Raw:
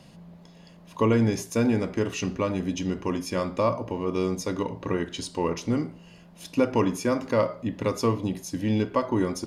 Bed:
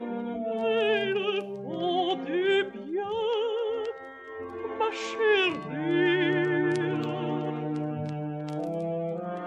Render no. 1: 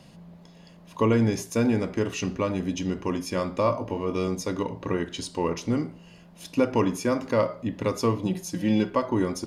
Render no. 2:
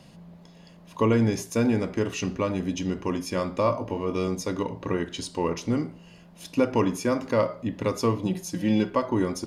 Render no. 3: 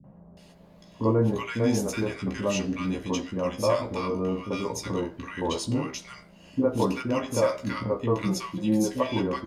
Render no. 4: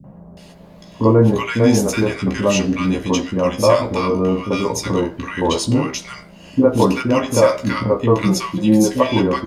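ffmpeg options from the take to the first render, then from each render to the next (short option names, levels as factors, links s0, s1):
-filter_complex "[0:a]asettb=1/sr,asplit=3[s0][s1][s2];[s0]atrim=end=3.644[s3];[s1]atrim=start=3.64:end=4.28,asetpts=PTS-STARTPTS,afade=t=in:d=0.004:c=qsin,afade=t=out:st=0.636:d=0.004:c=qsin,asplit=2[s4][s5];[s5]adelay=20,volume=0.422[s6];[s4][s6]amix=inputs=2:normalize=0,atrim=end_sample=28224[s7];[s2]atrim=start=4.276[s8];[s3][s7]acrossfade=d=0.004:c1=hsin:c2=qsin[s9];[s9][s8]acrossfade=d=0.004:c1=qsin:c2=hsin,asettb=1/sr,asplit=3[s10][s11][s12];[s10]atrim=end=8.254[s13];[s11]atrim=start=8.25:end=8.91,asetpts=PTS-STARTPTS,afade=t=in:d=0.004:c=qsin,afade=t=out:st=0.656:d=0.004:c=qsin,aecho=1:1:5.6:0.71,atrim=end_sample=29106[s14];[s12]atrim=start=8.906[s15];[s13][s14]acrossfade=d=0.004:c1=hsin:c2=qsin[s16];[s16][s15]acrossfade=d=0.004:c1=qsin:c2=hsin"
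-af anull
-filter_complex "[0:a]asplit=2[s0][s1];[s1]adelay=15,volume=0.562[s2];[s0][s2]amix=inputs=2:normalize=0,acrossover=split=310|1200[s3][s4][s5];[s4]adelay=40[s6];[s5]adelay=370[s7];[s3][s6][s7]amix=inputs=3:normalize=0"
-af "volume=3.35,alimiter=limit=0.891:level=0:latency=1"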